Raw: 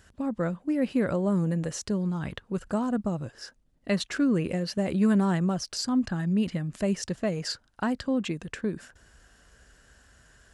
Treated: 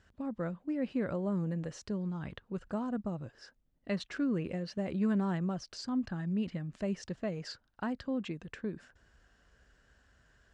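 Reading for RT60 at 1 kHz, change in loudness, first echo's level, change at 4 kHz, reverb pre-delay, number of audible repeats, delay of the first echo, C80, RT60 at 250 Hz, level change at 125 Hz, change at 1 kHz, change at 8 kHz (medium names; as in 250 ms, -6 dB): no reverb, -8.0 dB, no echo, -11.0 dB, no reverb, no echo, no echo, no reverb, no reverb, -7.5 dB, -8.0 dB, -15.0 dB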